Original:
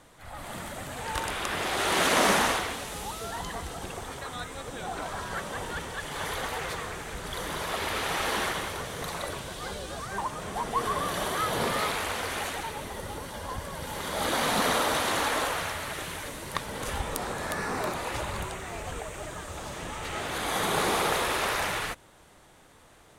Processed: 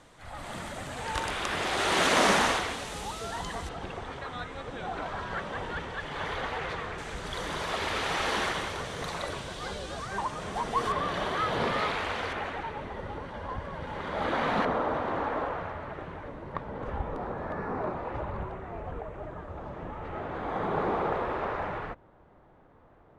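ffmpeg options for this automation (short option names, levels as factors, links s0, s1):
-af "asetnsamples=n=441:p=0,asendcmd='3.69 lowpass f 3300;6.98 lowpass f 6600;10.92 lowpass f 3600;12.33 lowpass f 2100;14.65 lowpass f 1100',lowpass=7800"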